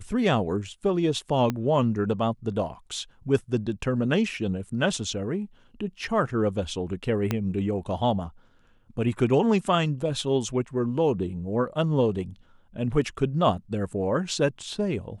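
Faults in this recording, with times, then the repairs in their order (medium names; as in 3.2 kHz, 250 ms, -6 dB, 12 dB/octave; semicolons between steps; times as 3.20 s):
1.50 s: pop -13 dBFS
7.31 s: pop -11 dBFS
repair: de-click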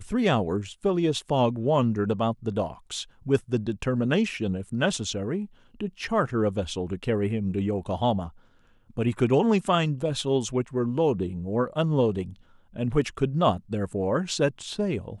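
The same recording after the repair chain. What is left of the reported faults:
1.50 s: pop
7.31 s: pop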